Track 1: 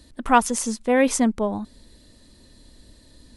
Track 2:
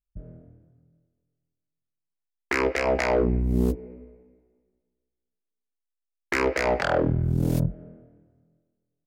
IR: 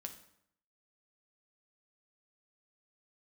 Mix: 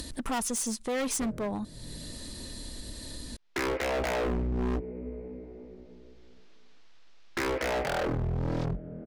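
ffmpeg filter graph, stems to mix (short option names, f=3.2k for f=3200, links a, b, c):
-filter_complex "[0:a]highshelf=f=4.5k:g=6.5,volume=-6.5dB[a];[1:a]lowpass=f=5k:w=0.5412,lowpass=f=5k:w=1.3066,adelay=1050,volume=1.5dB[b];[a][b]amix=inputs=2:normalize=0,acompressor=mode=upward:threshold=-26dB:ratio=2.5,asoftclip=type=hard:threshold=-27.5dB"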